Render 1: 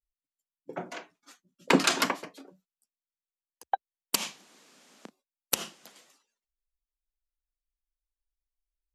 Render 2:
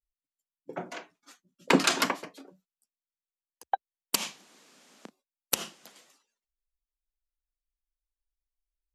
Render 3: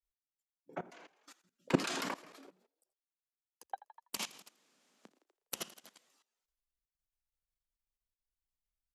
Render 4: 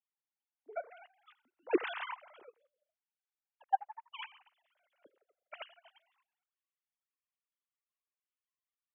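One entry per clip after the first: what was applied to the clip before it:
no processing that can be heard
echo with shifted repeats 82 ms, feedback 55%, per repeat +47 Hz, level −16.5 dB; output level in coarse steps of 18 dB; level −1.5 dB
three sine waves on the formant tracks; level +1 dB

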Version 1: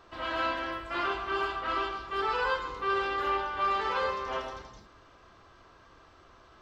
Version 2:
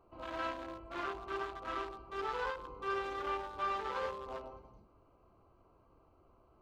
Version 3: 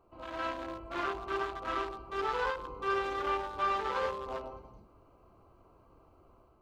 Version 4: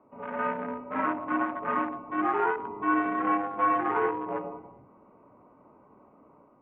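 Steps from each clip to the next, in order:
adaptive Wiener filter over 25 samples; every ending faded ahead of time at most 120 dB per second; level −6 dB
automatic gain control gain up to 5 dB
single-sideband voice off tune −84 Hz 200–2,300 Hz; level +6.5 dB

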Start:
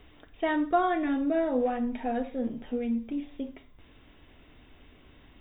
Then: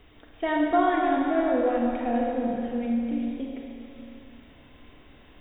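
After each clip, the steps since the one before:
echo through a band-pass that steps 138 ms, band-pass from 680 Hz, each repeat 0.7 octaves, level −5.5 dB
four-comb reverb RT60 2.8 s, combs from 30 ms, DRR −0.5 dB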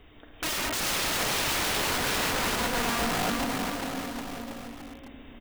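wrap-around overflow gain 26 dB
bouncing-ball delay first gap 400 ms, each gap 0.9×, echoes 5
level +1 dB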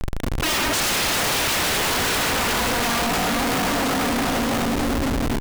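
comparator with hysteresis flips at −47 dBFS
level +8.5 dB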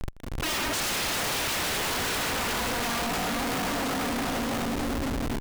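volume swells 256 ms
level −7 dB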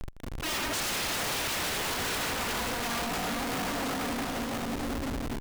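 brickwall limiter −30.5 dBFS, peak gain reduction 7 dB

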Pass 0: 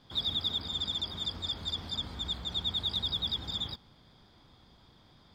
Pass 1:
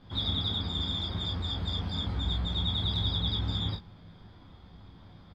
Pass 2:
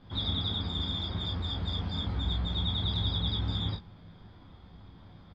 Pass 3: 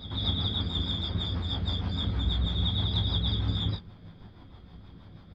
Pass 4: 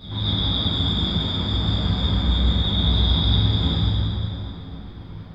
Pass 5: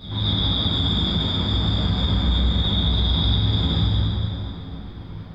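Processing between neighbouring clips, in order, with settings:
bass and treble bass +7 dB, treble −12 dB; on a send: ambience of single reflections 11 ms −3.5 dB, 30 ms −4.5 dB, 48 ms −7.5 dB; on the sum: level +1.5 dB
high-frequency loss of the air 67 metres
rotating-speaker cabinet horn 6.3 Hz; echo ahead of the sound 239 ms −14.5 dB; level +4 dB
dense smooth reverb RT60 3.5 s, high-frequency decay 0.7×, DRR −9 dB
brickwall limiter −13 dBFS, peak gain reduction 4.5 dB; level +1.5 dB

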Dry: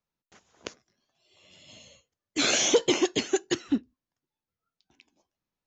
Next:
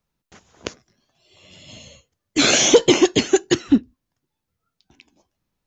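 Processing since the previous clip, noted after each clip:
low-shelf EQ 190 Hz +8.5 dB
level +8 dB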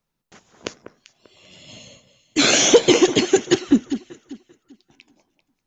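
parametric band 69 Hz −12 dB 0.72 octaves
delay that swaps between a low-pass and a high-pass 196 ms, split 1,800 Hz, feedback 51%, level −10 dB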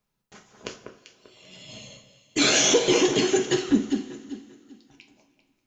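brickwall limiter −10 dBFS, peak gain reduction 8 dB
coupled-rooms reverb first 0.31 s, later 2.4 s, from −20 dB, DRR 2 dB
level −2.5 dB

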